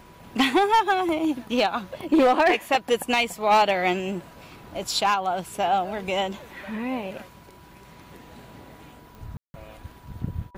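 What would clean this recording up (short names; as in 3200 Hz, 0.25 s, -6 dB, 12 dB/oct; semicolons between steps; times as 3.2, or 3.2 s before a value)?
clip repair -13 dBFS; de-click; notch 980 Hz, Q 30; room tone fill 9.37–9.54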